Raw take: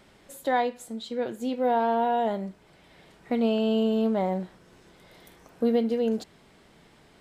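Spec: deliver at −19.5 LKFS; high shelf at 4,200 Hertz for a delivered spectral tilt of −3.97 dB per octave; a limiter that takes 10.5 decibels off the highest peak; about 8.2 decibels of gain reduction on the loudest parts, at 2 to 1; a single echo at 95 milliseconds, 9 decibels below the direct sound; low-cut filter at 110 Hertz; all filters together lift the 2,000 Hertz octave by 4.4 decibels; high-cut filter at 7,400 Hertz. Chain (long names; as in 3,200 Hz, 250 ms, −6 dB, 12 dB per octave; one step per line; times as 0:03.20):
high-pass filter 110 Hz
low-pass filter 7,400 Hz
parametric band 2,000 Hz +4.5 dB
high-shelf EQ 4,200 Hz +5 dB
downward compressor 2 to 1, threshold −34 dBFS
brickwall limiter −29.5 dBFS
single-tap delay 95 ms −9 dB
level +19 dB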